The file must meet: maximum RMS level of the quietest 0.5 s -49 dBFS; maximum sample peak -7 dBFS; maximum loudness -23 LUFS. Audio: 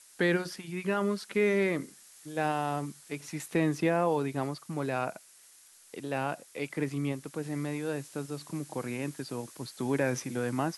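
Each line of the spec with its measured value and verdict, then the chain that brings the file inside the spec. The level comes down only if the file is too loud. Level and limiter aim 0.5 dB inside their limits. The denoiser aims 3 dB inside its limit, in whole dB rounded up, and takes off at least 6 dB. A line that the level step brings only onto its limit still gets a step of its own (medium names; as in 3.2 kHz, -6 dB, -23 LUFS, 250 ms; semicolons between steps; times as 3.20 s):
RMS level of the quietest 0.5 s -57 dBFS: pass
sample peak -15.5 dBFS: pass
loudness -32.5 LUFS: pass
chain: none needed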